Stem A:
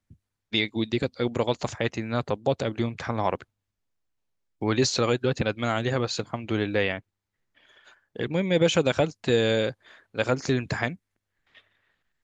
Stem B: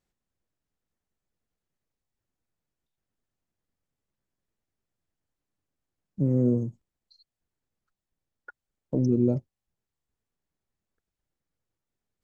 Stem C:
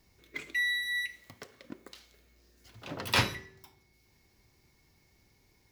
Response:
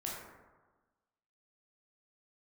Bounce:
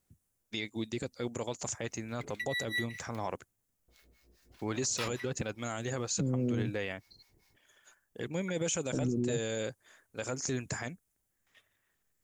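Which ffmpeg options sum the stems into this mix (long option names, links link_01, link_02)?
-filter_complex "[0:a]aexciter=amount=10.1:drive=2.8:freq=5900,volume=-9dB,asplit=2[link_01][link_02];[1:a]alimiter=limit=-19dB:level=0:latency=1:release=435,volume=1dB[link_03];[2:a]acrossover=split=730[link_04][link_05];[link_04]aeval=exprs='val(0)*(1-1/2+1/2*cos(2*PI*4.9*n/s))':channel_layout=same[link_06];[link_05]aeval=exprs='val(0)*(1-1/2-1/2*cos(2*PI*4.9*n/s))':channel_layout=same[link_07];[link_06][link_07]amix=inputs=2:normalize=0,adelay=1850,volume=2.5dB,asplit=3[link_08][link_09][link_10];[link_08]atrim=end=3.34,asetpts=PTS-STARTPTS,afade=type=out:start_time=3.336:duration=0.004:curve=hsin[link_11];[link_09]atrim=start=3.34:end=3.88,asetpts=PTS-STARTPTS,volume=0[link_12];[link_10]atrim=start=3.88,asetpts=PTS-STARTPTS,afade=type=in:duration=0.004:curve=hsin[link_13];[link_11][link_12][link_13]concat=n=3:v=0:a=1[link_14];[link_02]apad=whole_len=333520[link_15];[link_14][link_15]sidechaincompress=threshold=-36dB:ratio=8:attack=47:release=233[link_16];[link_01][link_03][link_16]amix=inputs=3:normalize=0,alimiter=limit=-23.5dB:level=0:latency=1:release=25"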